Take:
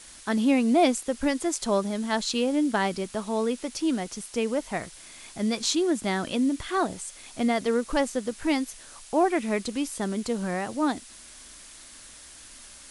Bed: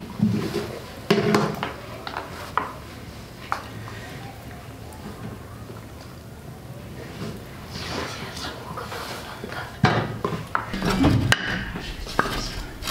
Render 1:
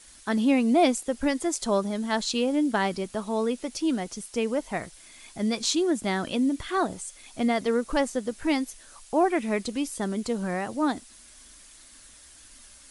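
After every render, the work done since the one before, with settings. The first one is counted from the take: denoiser 6 dB, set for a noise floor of -48 dBFS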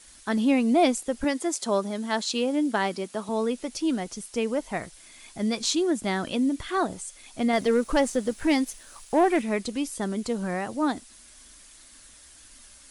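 1.24–3.29 HPF 190 Hz; 7.53–9.42 sample leveller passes 1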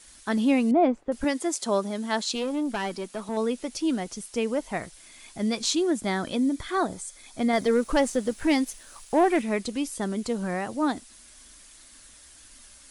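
0.71–1.12 LPF 1300 Hz; 2.35–3.37 tube stage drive 22 dB, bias 0.35; 6.02–7.77 notch 2800 Hz, Q 6.2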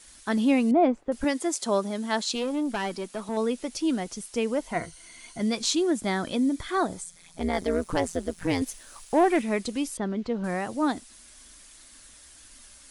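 4.72–5.41 ripple EQ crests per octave 1.9, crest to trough 10 dB; 7.04–8.62 AM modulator 170 Hz, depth 85%; 9.97–10.44 air absorption 230 m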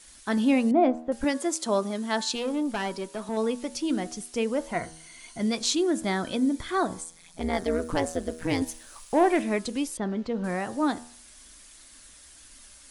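de-hum 80.19 Hz, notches 23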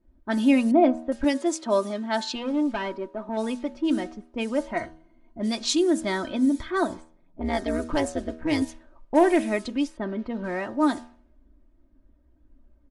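low-pass opened by the level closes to 300 Hz, open at -21.5 dBFS; comb 3.2 ms, depth 61%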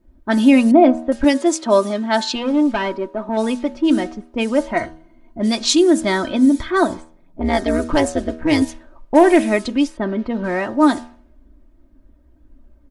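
gain +8.5 dB; limiter -2 dBFS, peak gain reduction 2.5 dB

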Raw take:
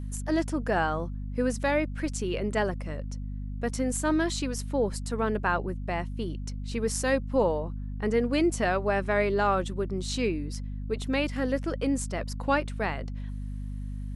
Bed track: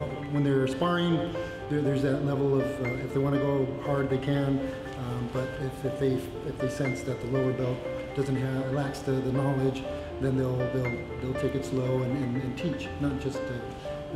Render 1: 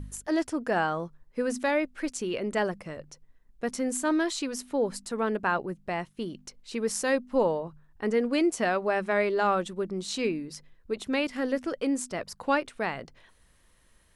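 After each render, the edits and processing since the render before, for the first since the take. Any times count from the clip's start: de-hum 50 Hz, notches 5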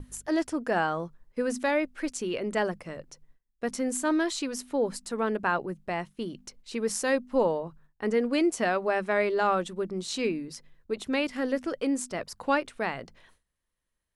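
notches 50/100/150/200 Hz; gate with hold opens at -47 dBFS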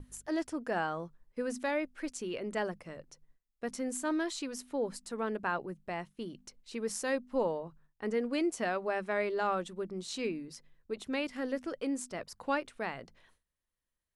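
gain -6.5 dB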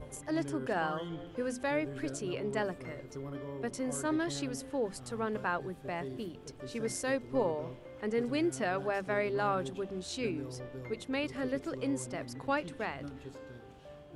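add bed track -15.5 dB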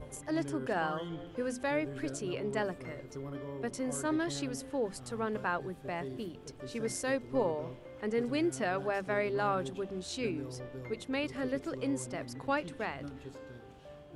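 nothing audible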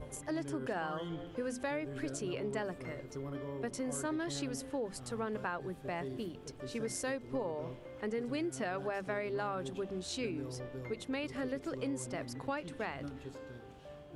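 compressor, threshold -33 dBFS, peak gain reduction 8 dB

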